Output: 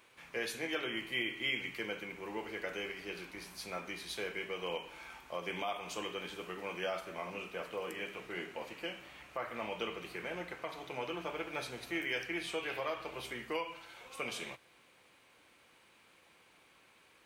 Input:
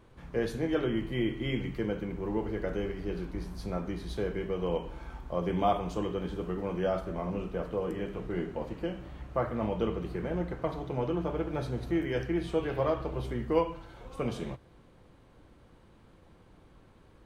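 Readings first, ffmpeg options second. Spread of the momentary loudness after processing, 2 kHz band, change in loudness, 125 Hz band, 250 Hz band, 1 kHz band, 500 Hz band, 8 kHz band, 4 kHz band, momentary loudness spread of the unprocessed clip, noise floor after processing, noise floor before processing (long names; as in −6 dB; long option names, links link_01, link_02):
8 LU, +4.5 dB, −6.5 dB, −19.0 dB, −13.0 dB, −6.0 dB, −9.5 dB, can't be measured, +5.0 dB, 7 LU, −65 dBFS, −58 dBFS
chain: -af "highpass=frequency=1300:poles=1,highshelf=frequency=5100:gain=8.5,alimiter=level_in=4.5dB:limit=-24dB:level=0:latency=1:release=196,volume=-4.5dB,equalizer=frequency=2400:width=2.5:gain=9,volume=1dB"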